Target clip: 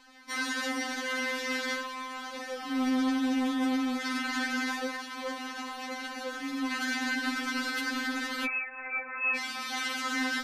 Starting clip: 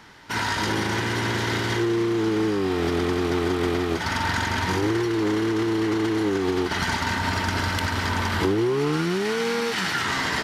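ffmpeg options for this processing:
-filter_complex "[0:a]asettb=1/sr,asplit=3[s0][s1][s2];[s0]atrim=end=8.454[s3];[s1]atrim=start=8.45:end=9.36,asetpts=PTS-STARTPTS,afade=t=in:d=0.004:c=qsin,afade=t=out:st=0.906:d=0.004:c=qsin,lowpass=f=2400:t=q:w=0.5098,lowpass=f=2400:t=q:w=0.6013,lowpass=f=2400:t=q:w=0.9,lowpass=f=2400:t=q:w=2.563,afreqshift=-2800[s4];[s2]atrim=start=9.356[s5];[s3][s4]acrossfade=d=0.004:c1=hsin:c2=qsin[s6];[s6][s5]acrossfade=d=0.004:c1=qsin:c2=hsin,afftfilt=real='re*3.46*eq(mod(b,12),0)':imag='im*3.46*eq(mod(b,12),0)':win_size=2048:overlap=0.75,volume=0.668"

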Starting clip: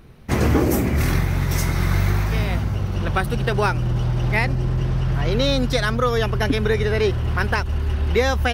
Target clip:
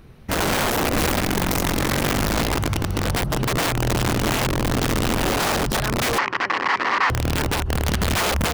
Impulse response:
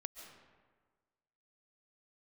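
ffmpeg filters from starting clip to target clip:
-filter_complex "[0:a]acrossover=split=1300[s0][s1];[s1]acompressor=threshold=0.0126:ratio=6[s2];[s0][s2]amix=inputs=2:normalize=0,aeval=exprs='(mod(6.31*val(0)+1,2)-1)/6.31':c=same,asettb=1/sr,asplit=3[s3][s4][s5];[s3]atrim=end=6.184[s6];[s4]atrim=start=6.18:end=7.1,asetpts=PTS-STARTPTS,afade=t=in:d=0.004:c=qsin,afade=t=out:st=0.916:d=0.004:c=qsin,highpass=400,equalizer=f=450:t=q:w=4:g=-5,equalizer=f=640:t=q:w=4:g=-9,equalizer=f=1100:t=q:w=4:g=8,equalizer=f=1900:t=q:w=4:g=9,equalizer=f=3600:t=q:w=4:g=-7,lowpass=f=4600:w=0.5412,lowpass=f=4600:w=1.3066[s7];[s5]atrim=start=7.096[s8];[s6][s7]acrossfade=d=0.004:c1=hsin:c2=qsin[s9];[s9][s8]acrossfade=d=0.004:c1=qsin:c2=hsin"

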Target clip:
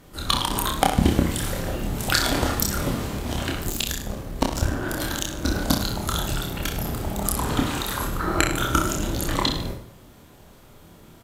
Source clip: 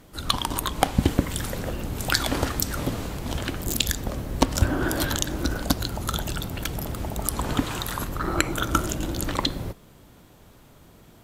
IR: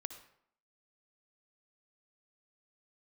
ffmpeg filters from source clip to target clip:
-filter_complex "[0:a]aecho=1:1:30|64.5|104.2|149.8|202.3:0.631|0.398|0.251|0.158|0.1,asplit=2[s0][s1];[1:a]atrim=start_sample=2205,adelay=25[s2];[s1][s2]afir=irnorm=-1:irlink=0,volume=0.562[s3];[s0][s3]amix=inputs=2:normalize=0,asettb=1/sr,asplit=3[s4][s5][s6];[s4]atrim=end=3.704[s7];[s5]atrim=start=3.7:end=5.45,asetpts=PTS-STARTPTS,afade=t=in:d=0.004:c=qsin,afade=t=out:st=1.746:d=0.004:c=qsin,aeval=exprs='(tanh(2.24*val(0)+0.8)-tanh(0.8))/2.24':c=same[s8];[s6]atrim=start=5.446[s9];[s7][s8]acrossfade=d=0.004:c1=hsin:c2=qsin[s10];[s10][s9]acrossfade=d=0.004:c1=qsin:c2=hsin"

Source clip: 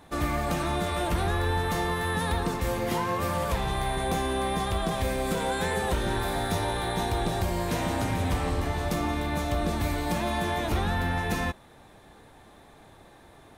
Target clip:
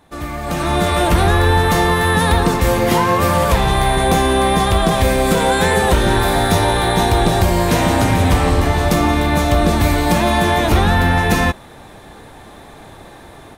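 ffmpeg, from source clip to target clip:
-af "dynaudnorm=f=410:g=3:m=5.01"

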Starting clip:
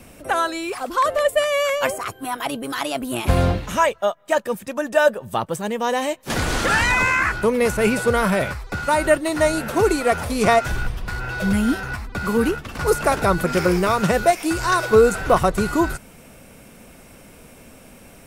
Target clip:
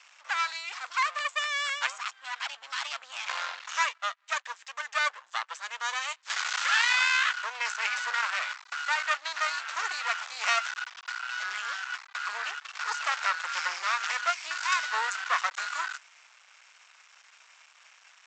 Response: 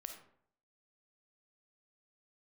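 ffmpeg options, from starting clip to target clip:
-af "aresample=16000,aeval=exprs='max(val(0),0)':c=same,aresample=44100,highpass=f=1100:w=0.5412,highpass=f=1100:w=1.3066"

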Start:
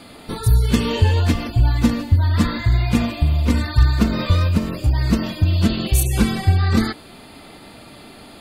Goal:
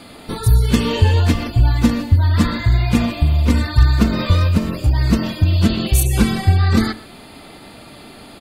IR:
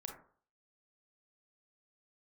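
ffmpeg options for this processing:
-filter_complex "[0:a]asplit=2[s0][s1];[s1]adelay=122.4,volume=0.126,highshelf=f=4000:g=-2.76[s2];[s0][s2]amix=inputs=2:normalize=0,volume=1.26"

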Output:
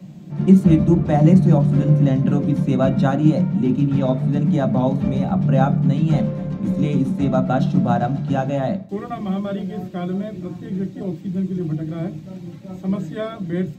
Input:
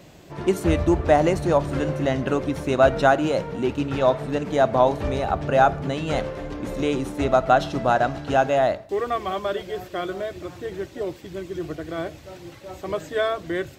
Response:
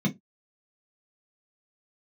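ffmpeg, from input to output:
-filter_complex "[0:a]asplit=2[s0][s1];[1:a]atrim=start_sample=2205,lowshelf=f=300:g=5.5[s2];[s1][s2]afir=irnorm=-1:irlink=0,volume=0.316[s3];[s0][s3]amix=inputs=2:normalize=0,volume=0.531"

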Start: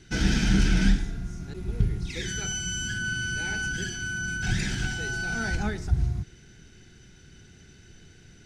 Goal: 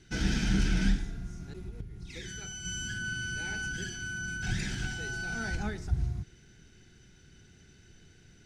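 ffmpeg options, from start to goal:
-filter_complex "[0:a]asettb=1/sr,asplit=3[s0][s1][s2];[s0]atrim=end=1.534[s3];[s1]atrim=start=1.53:end=2.65,asetpts=PTS-STARTPTS,afade=t=in:d=0.004:c=qsin,afade=t=out:st=1.116:d=0.004:c=qsin,acompressor=threshold=0.0251:ratio=8[s4];[s2]atrim=start=2.646[s5];[s3][s4]acrossfade=d=0.004:c1=hsin:c2=qsin[s6];[s6][s5]acrossfade=d=0.004:c1=qsin:c2=hsin,volume=0.531"

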